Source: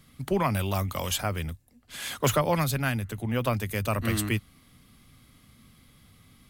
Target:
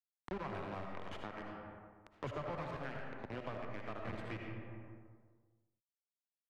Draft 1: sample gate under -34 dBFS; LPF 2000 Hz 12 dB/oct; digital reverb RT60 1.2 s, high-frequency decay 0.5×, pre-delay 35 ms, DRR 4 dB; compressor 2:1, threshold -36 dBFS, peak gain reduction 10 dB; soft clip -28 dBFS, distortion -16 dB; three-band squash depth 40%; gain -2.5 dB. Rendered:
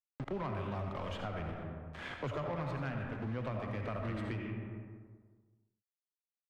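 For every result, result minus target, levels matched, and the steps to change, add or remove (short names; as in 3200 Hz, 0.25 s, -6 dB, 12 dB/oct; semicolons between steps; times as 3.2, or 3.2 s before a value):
sample gate: distortion -14 dB; compressor: peak gain reduction -4 dB
change: sample gate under -23 dBFS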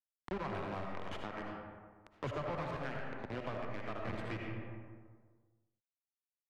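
compressor: peak gain reduction -4 dB
change: compressor 2:1, threshold -44 dBFS, peak gain reduction 14 dB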